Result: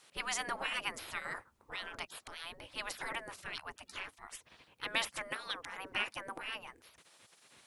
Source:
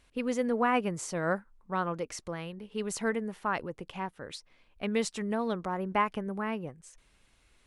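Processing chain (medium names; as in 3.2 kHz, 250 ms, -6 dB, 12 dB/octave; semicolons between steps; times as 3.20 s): spectral gate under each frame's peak -20 dB weak; 5.27–6.43 s: bass shelf 110 Hz -9 dB; trim +9 dB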